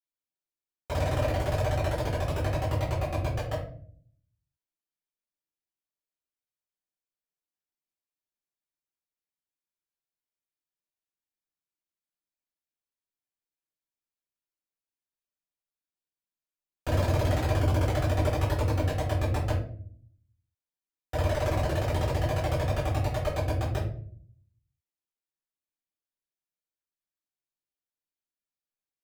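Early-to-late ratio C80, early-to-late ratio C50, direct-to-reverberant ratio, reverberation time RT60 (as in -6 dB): 9.0 dB, 5.5 dB, -8.5 dB, 0.55 s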